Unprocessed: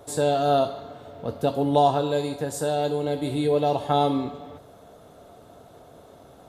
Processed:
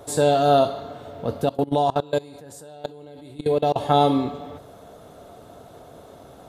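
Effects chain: 1.44–3.76 s: level held to a coarse grid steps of 23 dB; trim +4 dB

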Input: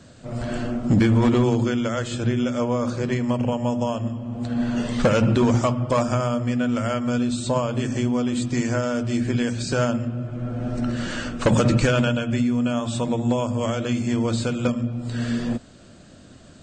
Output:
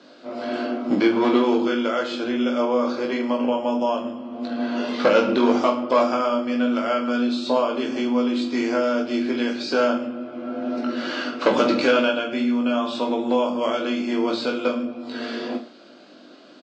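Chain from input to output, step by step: elliptic band-pass 280–4800 Hz, stop band 50 dB; band-stop 1.8 kHz, Q 9.4; reverse bouncing-ball echo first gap 20 ms, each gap 1.2×, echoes 5; trim +2 dB

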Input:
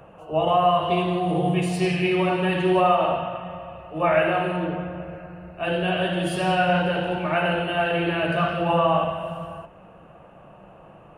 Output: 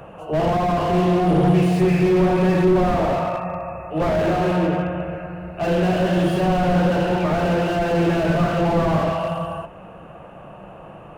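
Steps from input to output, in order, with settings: spectral selection erased 1.79–3.91 s, 2.7–5.9 kHz; slew-rate limiter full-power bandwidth 32 Hz; trim +7.5 dB

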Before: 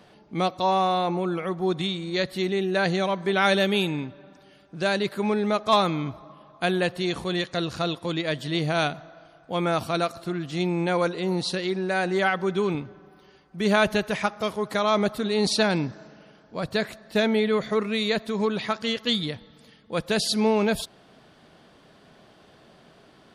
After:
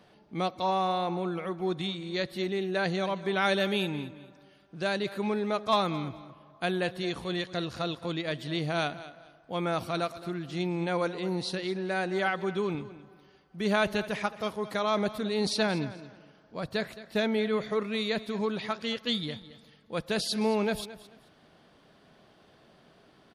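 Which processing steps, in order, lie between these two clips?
peaking EQ 7.5 kHz -3.5 dB 0.45 oct; feedback delay 218 ms, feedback 24%, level -16 dB; trim -5.5 dB

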